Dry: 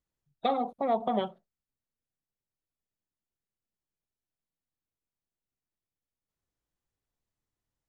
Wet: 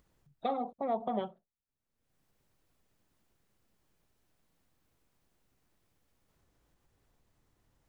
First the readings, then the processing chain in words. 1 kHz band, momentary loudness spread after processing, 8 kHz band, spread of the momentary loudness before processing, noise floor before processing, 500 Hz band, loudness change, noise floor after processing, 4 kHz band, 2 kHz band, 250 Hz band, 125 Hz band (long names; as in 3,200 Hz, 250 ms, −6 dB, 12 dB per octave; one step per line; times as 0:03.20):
−5.5 dB, 5 LU, can't be measured, 5 LU, below −85 dBFS, −5.0 dB, −5.0 dB, below −85 dBFS, −9.5 dB, −7.5 dB, −4.5 dB, −4.5 dB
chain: high-shelf EQ 2,300 Hz −7.5 dB
upward compression, threshold −49 dBFS
level −4.5 dB